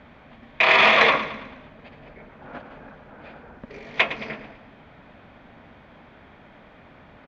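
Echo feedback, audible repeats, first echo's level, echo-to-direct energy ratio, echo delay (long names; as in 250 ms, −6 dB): 47%, 4, −13.0 dB, −12.0 dB, 110 ms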